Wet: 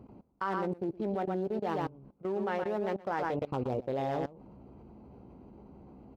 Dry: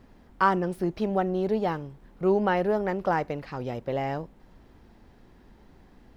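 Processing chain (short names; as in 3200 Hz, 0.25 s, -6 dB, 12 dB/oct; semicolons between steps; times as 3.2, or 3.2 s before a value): Wiener smoothing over 25 samples; echo 0.119 s -8 dB; dynamic EQ 150 Hz, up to -6 dB, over -41 dBFS, Q 1.2; reverse; compressor 10:1, threshold -33 dBFS, peak gain reduction 17 dB; reverse; HPF 83 Hz 12 dB/oct; doubler 15 ms -11.5 dB; level quantiser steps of 20 dB; gain +8 dB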